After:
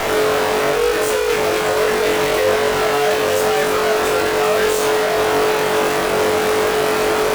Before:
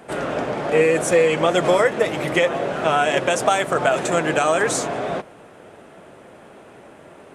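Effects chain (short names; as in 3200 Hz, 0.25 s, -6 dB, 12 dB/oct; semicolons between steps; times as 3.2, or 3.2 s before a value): infinite clipping; tone controls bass -11 dB, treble -5 dB; whine 430 Hz -29 dBFS; added harmonics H 4 -15 dB, 7 -13 dB, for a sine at -14.5 dBFS; on a send: flutter echo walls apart 3.6 m, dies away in 0.38 s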